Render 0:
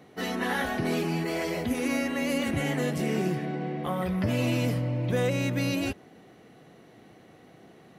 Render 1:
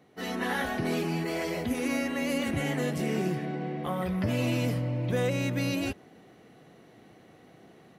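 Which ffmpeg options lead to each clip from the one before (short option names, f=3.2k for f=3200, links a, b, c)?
-af "dynaudnorm=f=150:g=3:m=6dB,volume=-7.5dB"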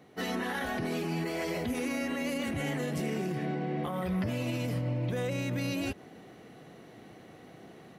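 -af "alimiter=level_in=4dB:limit=-24dB:level=0:latency=1:release=118,volume=-4dB,volume=3.5dB"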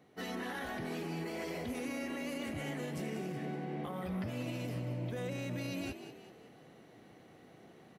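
-filter_complex "[0:a]asplit=6[a][b][c][d][e][f];[b]adelay=188,afreqshift=57,volume=-10.5dB[g];[c]adelay=376,afreqshift=114,volume=-17.4dB[h];[d]adelay=564,afreqshift=171,volume=-24.4dB[i];[e]adelay=752,afreqshift=228,volume=-31.3dB[j];[f]adelay=940,afreqshift=285,volume=-38.2dB[k];[a][g][h][i][j][k]amix=inputs=6:normalize=0,volume=-7dB"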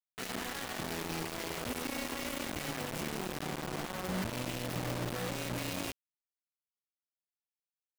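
-af "acrusher=bits=5:mix=0:aa=0.000001"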